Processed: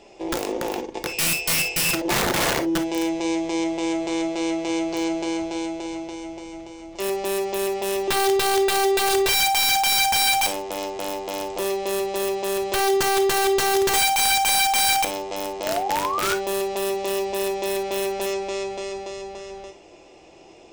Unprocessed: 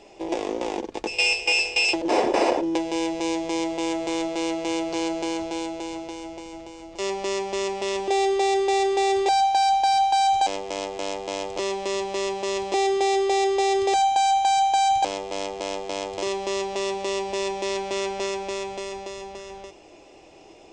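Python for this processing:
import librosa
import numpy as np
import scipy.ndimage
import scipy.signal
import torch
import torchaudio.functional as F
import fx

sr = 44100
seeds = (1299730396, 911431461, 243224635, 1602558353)

y = fx.spec_paint(x, sr, seeds[0], shape='rise', start_s=15.63, length_s=0.72, low_hz=590.0, high_hz=1500.0, level_db=-26.0)
y = (np.mod(10.0 ** (16.5 / 20.0) * y + 1.0, 2.0) - 1.0) / 10.0 ** (16.5 / 20.0)
y = fx.rev_gated(y, sr, seeds[1], gate_ms=80, shape='flat', drr_db=6.5)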